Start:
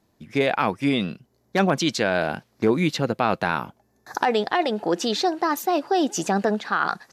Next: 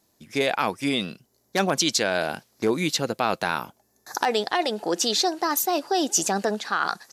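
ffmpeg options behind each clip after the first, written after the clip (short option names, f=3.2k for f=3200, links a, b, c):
-af "bass=f=250:g=-5,treble=f=4k:g=12,volume=-2dB"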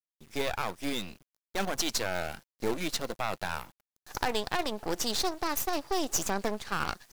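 -af "aeval=exprs='if(lt(val(0),0),0.251*val(0),val(0))':c=same,acrusher=bits=6:dc=4:mix=0:aa=0.000001,volume=-4dB"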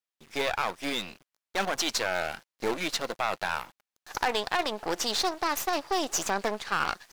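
-filter_complex "[0:a]asplit=2[a][b];[b]highpass=f=720:p=1,volume=11dB,asoftclip=type=tanh:threshold=-10.5dB[c];[a][c]amix=inputs=2:normalize=0,lowpass=f=4.1k:p=1,volume=-6dB"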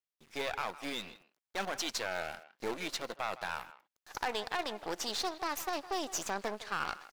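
-filter_complex "[0:a]asplit=2[a][b];[b]adelay=160,highpass=300,lowpass=3.4k,asoftclip=type=hard:threshold=-19.5dB,volume=-15dB[c];[a][c]amix=inputs=2:normalize=0,volume=-7.5dB"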